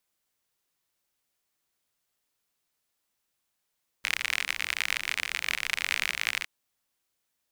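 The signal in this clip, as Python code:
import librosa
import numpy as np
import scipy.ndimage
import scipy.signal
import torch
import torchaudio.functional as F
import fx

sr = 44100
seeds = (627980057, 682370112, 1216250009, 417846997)

y = fx.rain(sr, seeds[0], length_s=2.41, drops_per_s=52.0, hz=2200.0, bed_db=-22.5)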